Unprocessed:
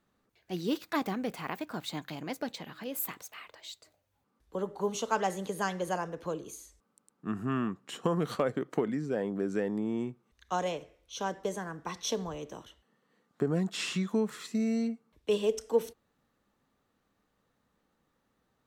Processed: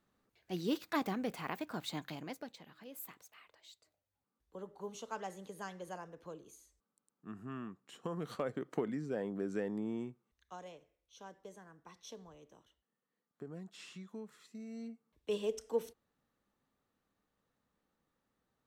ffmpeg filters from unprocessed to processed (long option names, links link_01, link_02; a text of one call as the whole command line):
ffmpeg -i in.wav -af "volume=14dB,afade=type=out:start_time=2.08:duration=0.41:silence=0.334965,afade=type=in:start_time=7.97:duration=0.8:silence=0.446684,afade=type=out:start_time=9.89:duration=0.67:silence=0.251189,afade=type=in:start_time=14.68:duration=0.68:silence=0.298538" out.wav